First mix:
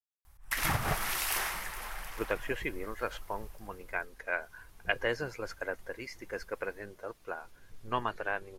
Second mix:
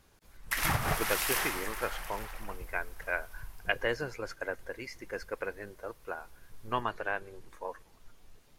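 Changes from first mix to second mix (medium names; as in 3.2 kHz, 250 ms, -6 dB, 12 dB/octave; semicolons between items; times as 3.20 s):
speech: entry -1.20 s; reverb: on, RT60 1.2 s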